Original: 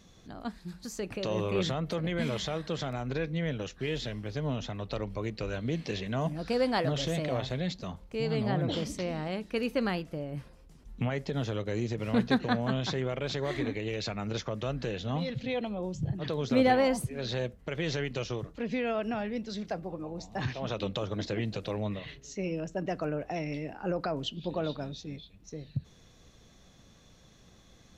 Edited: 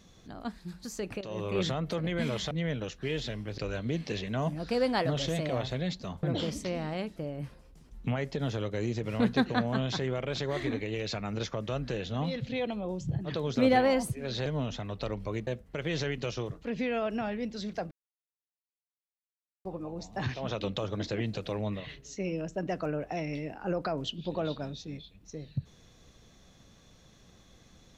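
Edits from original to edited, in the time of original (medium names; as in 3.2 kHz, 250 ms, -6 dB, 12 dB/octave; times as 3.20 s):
1.21–1.62 s: fade in, from -12 dB
2.51–3.29 s: delete
4.36–5.37 s: move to 17.40 s
8.02–8.57 s: delete
9.50–10.10 s: delete
19.84 s: insert silence 1.74 s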